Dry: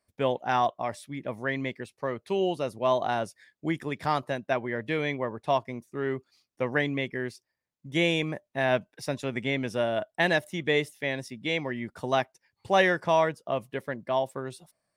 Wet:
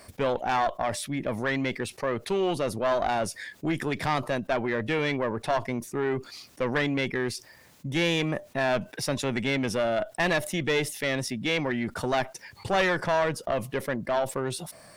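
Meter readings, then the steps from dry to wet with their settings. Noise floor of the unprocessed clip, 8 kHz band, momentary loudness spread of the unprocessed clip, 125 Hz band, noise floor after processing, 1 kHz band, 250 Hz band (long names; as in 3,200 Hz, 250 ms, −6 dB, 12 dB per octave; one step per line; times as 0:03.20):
below −85 dBFS, +10.0 dB, 10 LU, +2.5 dB, −55 dBFS, 0.0 dB, +2.5 dB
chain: one-sided soft clipper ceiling −26 dBFS
envelope flattener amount 50%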